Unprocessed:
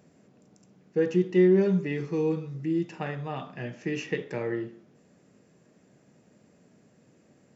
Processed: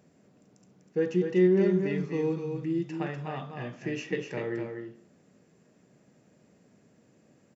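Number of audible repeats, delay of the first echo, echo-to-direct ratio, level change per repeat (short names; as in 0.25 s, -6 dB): 1, 0.247 s, -6.0 dB, no steady repeat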